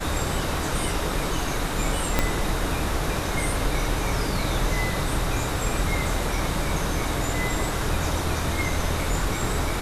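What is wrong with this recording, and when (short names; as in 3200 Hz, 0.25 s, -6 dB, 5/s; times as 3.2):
2.19 pop -5 dBFS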